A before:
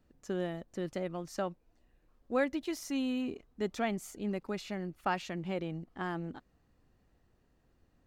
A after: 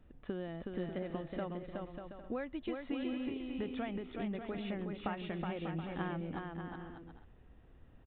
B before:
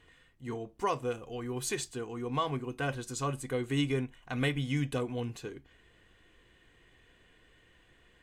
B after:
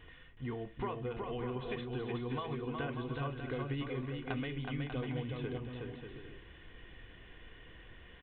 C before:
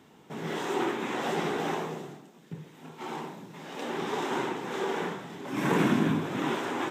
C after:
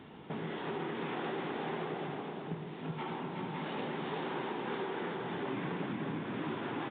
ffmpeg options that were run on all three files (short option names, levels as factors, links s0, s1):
-af "lowshelf=f=89:g=7,acompressor=threshold=0.00891:ratio=10,aresample=8000,aresample=44100,aecho=1:1:370|592|725.2|805.1|853.1:0.631|0.398|0.251|0.158|0.1,volume=1.68"